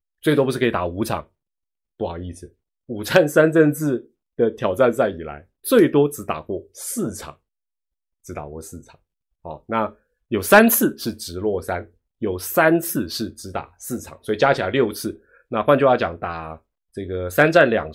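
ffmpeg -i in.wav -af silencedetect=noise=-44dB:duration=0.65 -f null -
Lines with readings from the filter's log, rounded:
silence_start: 1.23
silence_end: 2.00 | silence_duration: 0.76
silence_start: 7.34
silence_end: 8.25 | silence_duration: 0.91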